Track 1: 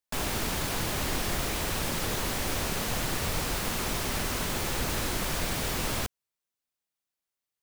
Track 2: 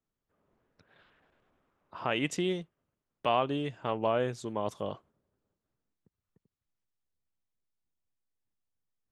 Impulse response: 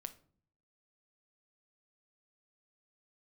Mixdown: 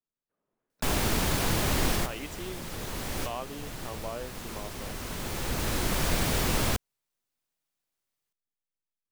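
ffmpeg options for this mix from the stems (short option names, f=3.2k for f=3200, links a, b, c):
-filter_complex "[0:a]lowshelf=f=500:g=3.5,adelay=700,volume=2dB[a];[1:a]equalizer=f=65:t=o:w=1.4:g=-14,volume=-9dB,asplit=2[b][c];[c]apad=whole_len=367192[d];[a][d]sidechaincompress=threshold=-49dB:ratio=4:attack=16:release=1260[e];[e][b]amix=inputs=2:normalize=0"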